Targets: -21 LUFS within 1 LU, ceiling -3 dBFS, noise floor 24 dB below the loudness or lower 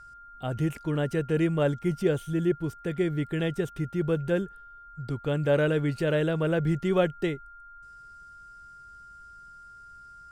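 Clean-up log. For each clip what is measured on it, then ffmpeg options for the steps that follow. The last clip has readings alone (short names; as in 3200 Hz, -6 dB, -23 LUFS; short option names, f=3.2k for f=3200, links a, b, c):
steady tone 1400 Hz; tone level -46 dBFS; loudness -28.0 LUFS; peak -11.0 dBFS; loudness target -21.0 LUFS
-> -af "bandreject=f=1.4k:w=30"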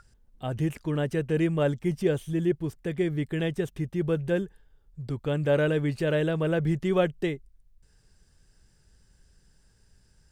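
steady tone none; loudness -28.0 LUFS; peak -11.0 dBFS; loudness target -21.0 LUFS
-> -af "volume=7dB"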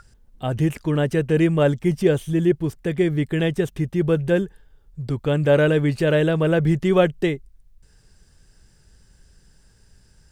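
loudness -21.0 LUFS; peak -4.0 dBFS; noise floor -56 dBFS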